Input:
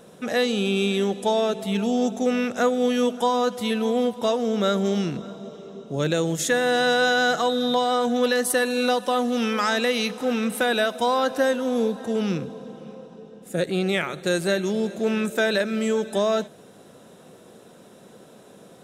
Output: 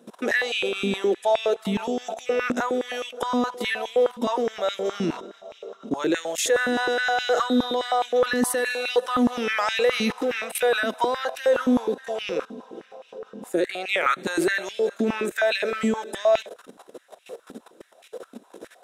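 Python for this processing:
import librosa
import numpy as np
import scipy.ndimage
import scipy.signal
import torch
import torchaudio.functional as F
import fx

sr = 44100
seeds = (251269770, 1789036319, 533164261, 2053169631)

y = fx.dynamic_eq(x, sr, hz=2000.0, q=2.2, threshold_db=-40.0, ratio=4.0, max_db=4)
y = fx.level_steps(y, sr, step_db=16)
y = fx.filter_held_highpass(y, sr, hz=9.6, low_hz=250.0, high_hz=2500.0)
y = y * librosa.db_to_amplitude(5.5)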